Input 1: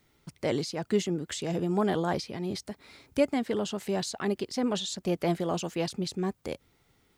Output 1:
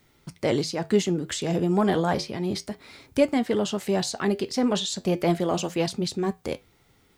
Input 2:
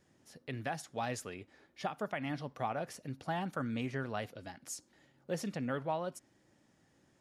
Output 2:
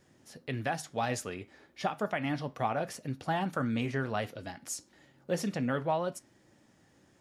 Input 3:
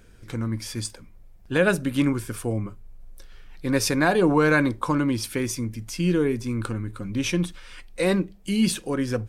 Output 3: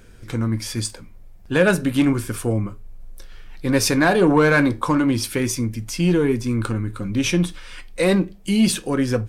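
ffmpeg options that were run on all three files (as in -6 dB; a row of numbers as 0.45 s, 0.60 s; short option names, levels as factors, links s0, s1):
-af "aeval=exprs='0.355*(cos(1*acos(clip(val(0)/0.355,-1,1)))-cos(1*PI/2))+0.02*(cos(5*acos(clip(val(0)/0.355,-1,1)))-cos(5*PI/2))':c=same,flanger=delay=7.7:depth=3.8:regen=-75:speed=0.33:shape=triangular,volume=2.37"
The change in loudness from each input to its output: +5.0 LU, +5.0 LU, +4.0 LU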